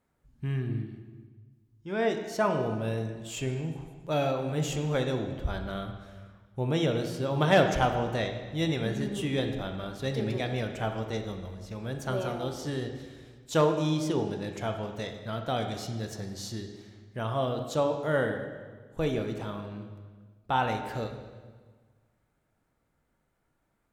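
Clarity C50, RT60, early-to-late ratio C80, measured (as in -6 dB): 7.0 dB, 1.5 s, 8.5 dB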